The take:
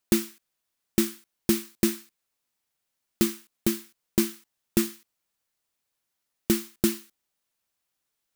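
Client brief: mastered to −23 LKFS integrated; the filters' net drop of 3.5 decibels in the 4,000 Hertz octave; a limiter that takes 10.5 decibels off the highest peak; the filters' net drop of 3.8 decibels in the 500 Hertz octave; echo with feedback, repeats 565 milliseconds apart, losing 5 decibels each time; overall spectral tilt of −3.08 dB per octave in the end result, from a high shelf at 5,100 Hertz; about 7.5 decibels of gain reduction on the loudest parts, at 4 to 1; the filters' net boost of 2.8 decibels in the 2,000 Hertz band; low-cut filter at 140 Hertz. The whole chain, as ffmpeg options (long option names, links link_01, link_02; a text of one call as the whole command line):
ffmpeg -i in.wav -af "highpass=140,equalizer=frequency=500:width_type=o:gain=-7.5,equalizer=frequency=2000:width_type=o:gain=5.5,equalizer=frequency=4000:width_type=o:gain=-4.5,highshelf=frequency=5100:gain=-3.5,acompressor=threshold=-29dB:ratio=4,alimiter=limit=-23.5dB:level=0:latency=1,aecho=1:1:565|1130|1695|2260|2825|3390|3955:0.562|0.315|0.176|0.0988|0.0553|0.031|0.0173,volume=19.5dB" out.wav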